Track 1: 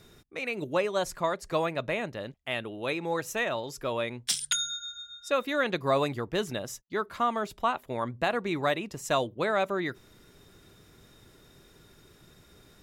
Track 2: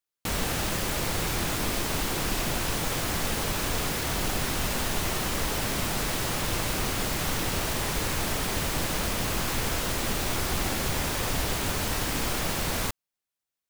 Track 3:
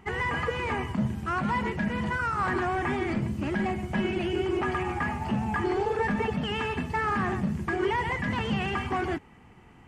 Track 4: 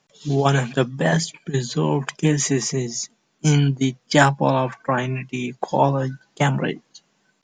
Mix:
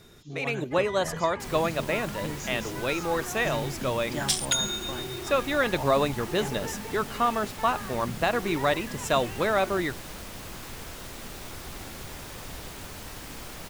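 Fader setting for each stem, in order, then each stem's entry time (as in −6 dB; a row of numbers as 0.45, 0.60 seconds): +2.5, −12.0, −11.5, −18.5 decibels; 0.00, 1.15, 0.65, 0.00 seconds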